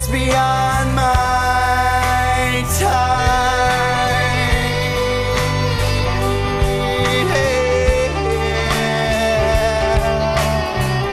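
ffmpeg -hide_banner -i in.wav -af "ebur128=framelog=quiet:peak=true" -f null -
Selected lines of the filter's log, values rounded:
Integrated loudness:
  I:         -16.3 LUFS
  Threshold: -26.3 LUFS
Loudness range:
  LRA:         1.7 LU
  Threshold: -36.4 LUFS
  LRA low:   -17.2 LUFS
  LRA high:  -15.5 LUFS
True peak:
  Peak:       -1.5 dBFS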